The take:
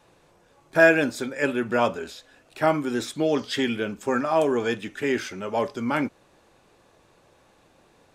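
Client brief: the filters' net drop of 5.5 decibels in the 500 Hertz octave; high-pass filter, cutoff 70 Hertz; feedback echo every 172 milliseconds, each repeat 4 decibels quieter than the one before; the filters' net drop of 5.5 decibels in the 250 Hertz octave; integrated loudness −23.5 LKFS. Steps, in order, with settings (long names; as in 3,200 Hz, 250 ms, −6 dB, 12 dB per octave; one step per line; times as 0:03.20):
high-pass filter 70 Hz
parametric band 250 Hz −4.5 dB
parametric band 500 Hz −6.5 dB
repeating echo 172 ms, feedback 63%, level −4 dB
level +2.5 dB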